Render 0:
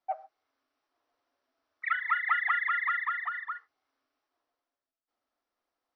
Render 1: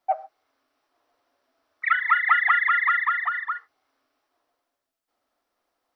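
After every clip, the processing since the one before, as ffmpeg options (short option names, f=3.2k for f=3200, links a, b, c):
-af "equalizer=f=620:w=1.5:g=2,volume=8dB"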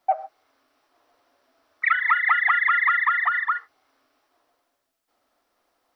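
-af "acompressor=threshold=-25dB:ratio=3,volume=6.5dB"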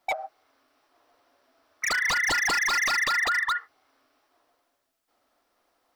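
-af "aeval=exprs='0.106*(abs(mod(val(0)/0.106+3,4)-2)-1)':c=same"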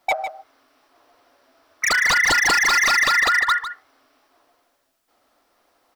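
-af "aecho=1:1:152:0.282,volume=7dB"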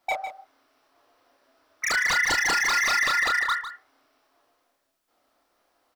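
-filter_complex "[0:a]asplit=2[a][b];[b]adelay=29,volume=-4.5dB[c];[a][c]amix=inputs=2:normalize=0,volume=-7dB"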